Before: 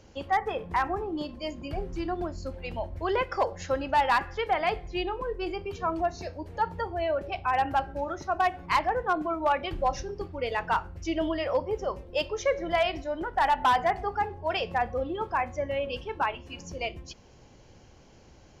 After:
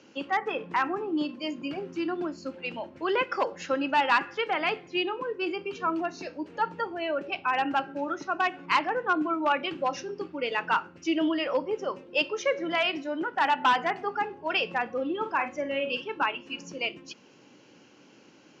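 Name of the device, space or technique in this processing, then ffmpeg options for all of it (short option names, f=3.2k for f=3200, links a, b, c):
television speaker: -filter_complex "[0:a]highpass=f=170:w=0.5412,highpass=f=170:w=1.3066,equalizer=f=290:t=q:w=4:g=7,equalizer=f=700:t=q:w=4:g=-6,equalizer=f=1.4k:t=q:w=4:g=5,equalizer=f=2.7k:t=q:w=4:g=8,lowpass=f=7.3k:w=0.5412,lowpass=f=7.3k:w=1.3066,asettb=1/sr,asplit=3[a][b][c];[a]atrim=end=15.184[d];[b]atrim=start=15.18:end=16.02,asetpts=PTS-STARTPTS,afade=t=in:d=0.004:c=qsin,afade=t=out:st=0.836:d=0.004:c=qsin,asplit=2[e][f];[f]adelay=48,volume=-9dB[g];[e][g]amix=inputs=2:normalize=0,atrim=end_sample=37044[h];[c]atrim=start=16.016[i];[d][h]acrossfade=d=0.004:c1=hsin:c2=qsin[j];[j][i]acrossfade=d=0.004:c1=qsin:c2=hsin"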